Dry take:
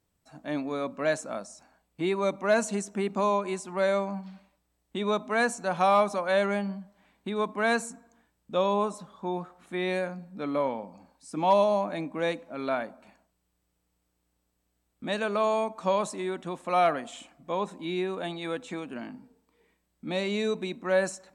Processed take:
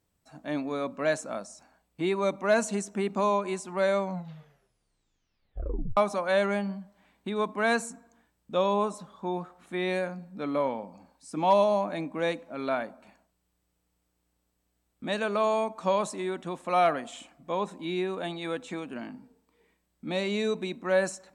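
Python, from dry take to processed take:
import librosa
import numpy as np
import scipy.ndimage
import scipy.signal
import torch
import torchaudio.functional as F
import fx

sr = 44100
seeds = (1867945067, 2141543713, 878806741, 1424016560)

y = fx.edit(x, sr, fx.tape_stop(start_s=4.01, length_s=1.96), tone=tone)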